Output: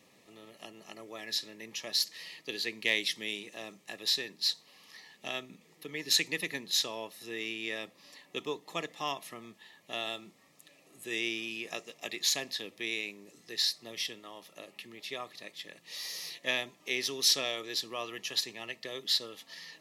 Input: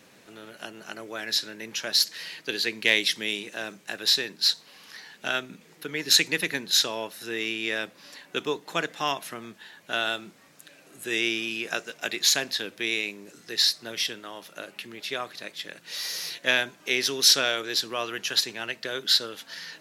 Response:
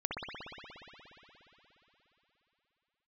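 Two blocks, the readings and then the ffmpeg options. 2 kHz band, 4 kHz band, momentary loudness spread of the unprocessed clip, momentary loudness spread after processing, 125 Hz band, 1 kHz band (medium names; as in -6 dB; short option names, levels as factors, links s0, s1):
-9.0 dB, -7.5 dB, 18 LU, 18 LU, -7.5 dB, -8.5 dB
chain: -af "asuperstop=centerf=1500:order=8:qfactor=4.6,volume=0.422"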